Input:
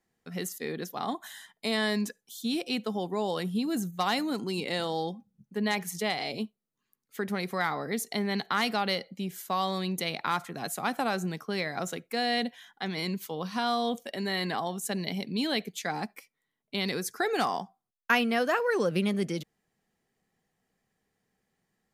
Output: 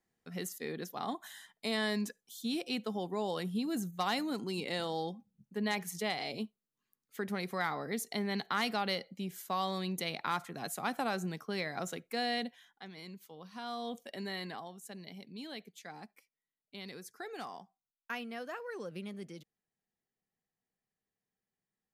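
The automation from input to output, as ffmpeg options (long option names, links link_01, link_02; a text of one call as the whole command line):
ffmpeg -i in.wav -af "volume=3.5dB,afade=type=out:start_time=12.23:duration=0.66:silence=0.281838,afade=type=in:start_time=13.49:duration=0.69:silence=0.375837,afade=type=out:start_time=14.18:duration=0.55:silence=0.398107" out.wav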